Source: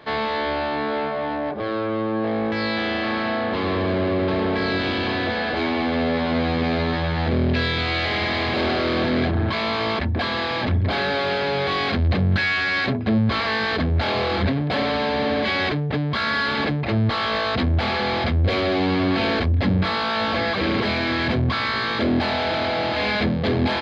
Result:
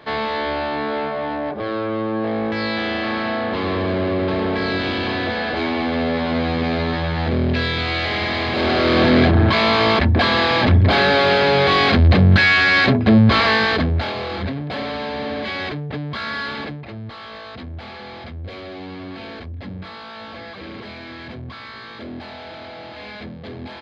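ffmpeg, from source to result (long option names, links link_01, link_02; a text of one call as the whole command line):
ffmpeg -i in.wav -af "volume=7.5dB,afade=type=in:start_time=8.53:duration=0.56:silence=0.473151,afade=type=out:start_time=13.45:duration=0.69:silence=0.266073,afade=type=out:start_time=16.45:duration=0.49:silence=0.354813" out.wav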